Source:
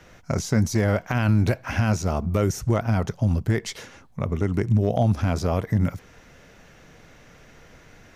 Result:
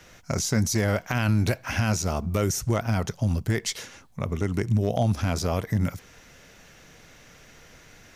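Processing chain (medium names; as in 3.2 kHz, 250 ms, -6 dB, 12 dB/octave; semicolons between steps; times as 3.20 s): treble shelf 2.6 kHz +9.5 dB; trim -3 dB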